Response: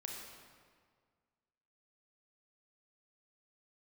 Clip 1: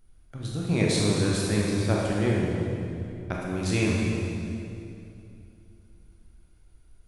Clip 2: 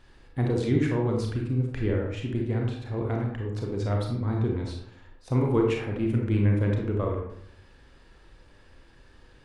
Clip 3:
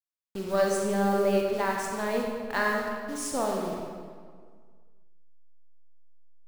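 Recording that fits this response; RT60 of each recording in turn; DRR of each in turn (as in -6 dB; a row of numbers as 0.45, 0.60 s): 3; 2.7, 0.70, 1.8 s; -4.0, 0.0, -0.5 dB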